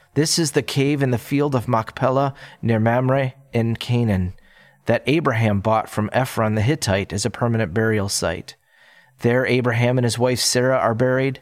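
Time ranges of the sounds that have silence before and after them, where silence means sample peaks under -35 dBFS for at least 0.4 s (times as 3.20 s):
4.87–8.51 s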